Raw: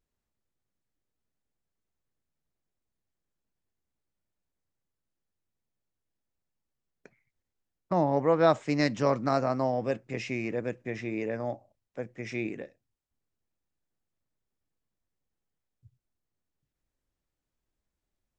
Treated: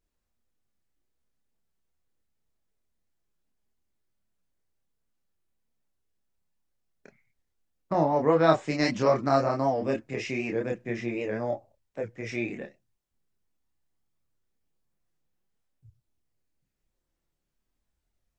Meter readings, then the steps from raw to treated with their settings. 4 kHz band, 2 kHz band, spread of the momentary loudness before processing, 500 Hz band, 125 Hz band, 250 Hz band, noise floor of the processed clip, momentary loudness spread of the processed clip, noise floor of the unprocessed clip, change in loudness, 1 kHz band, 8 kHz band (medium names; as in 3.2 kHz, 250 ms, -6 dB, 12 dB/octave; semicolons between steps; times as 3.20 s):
+3.0 dB, +2.5 dB, 17 LU, +2.0 dB, +1.0 dB, +1.5 dB, -81 dBFS, 14 LU, under -85 dBFS, +2.0 dB, +2.5 dB, no reading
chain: chorus voices 4, 0.24 Hz, delay 28 ms, depth 3 ms; warped record 78 rpm, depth 100 cents; trim +5.5 dB